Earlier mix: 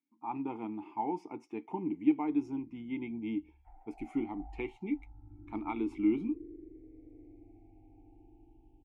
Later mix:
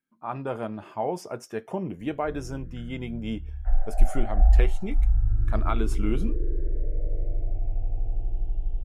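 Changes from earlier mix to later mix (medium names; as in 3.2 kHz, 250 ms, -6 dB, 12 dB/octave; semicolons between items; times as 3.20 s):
speech -7.0 dB; master: remove vowel filter u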